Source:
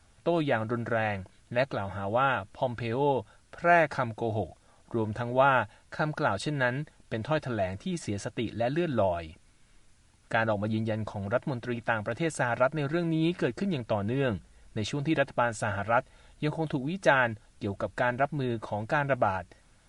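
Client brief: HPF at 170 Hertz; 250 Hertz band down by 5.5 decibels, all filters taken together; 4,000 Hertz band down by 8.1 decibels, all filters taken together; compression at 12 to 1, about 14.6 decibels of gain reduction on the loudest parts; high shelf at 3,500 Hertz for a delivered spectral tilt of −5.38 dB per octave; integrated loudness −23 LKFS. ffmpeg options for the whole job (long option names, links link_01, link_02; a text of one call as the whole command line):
ffmpeg -i in.wav -af "highpass=170,equalizer=frequency=250:width_type=o:gain=-6.5,highshelf=frequency=3500:gain=-4.5,equalizer=frequency=4000:width_type=o:gain=-8,acompressor=threshold=-33dB:ratio=12,volume=16.5dB" out.wav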